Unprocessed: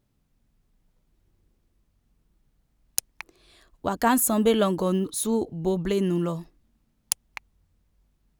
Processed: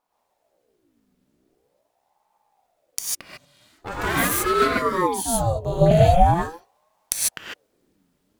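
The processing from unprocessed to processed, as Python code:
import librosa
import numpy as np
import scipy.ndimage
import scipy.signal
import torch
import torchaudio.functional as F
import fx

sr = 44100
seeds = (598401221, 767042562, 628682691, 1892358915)

y = fx.lower_of_two(x, sr, delay_ms=2.3, at=(3.07, 4.62))
y = fx.low_shelf(y, sr, hz=240.0, db=-6.0)
y = fx.rev_gated(y, sr, seeds[0], gate_ms=170, shape='rising', drr_db=-5.5)
y = fx.rider(y, sr, range_db=10, speed_s=2.0)
y = fx.peak_eq(y, sr, hz=420.0, db=10.0, octaves=0.87, at=(5.81, 6.34))
y = fx.ring_lfo(y, sr, carrier_hz=540.0, swing_pct=60, hz=0.43)
y = y * librosa.db_to_amplitude(1.5)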